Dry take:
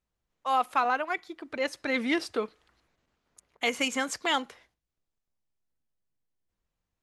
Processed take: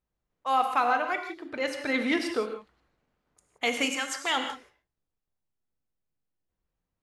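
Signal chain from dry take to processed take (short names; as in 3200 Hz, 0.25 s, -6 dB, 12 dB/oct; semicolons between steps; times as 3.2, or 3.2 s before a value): 3.9–4.36 HPF 1300 Hz -> 510 Hz 6 dB/oct; non-linear reverb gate 0.2 s flat, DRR 5 dB; mismatched tape noise reduction decoder only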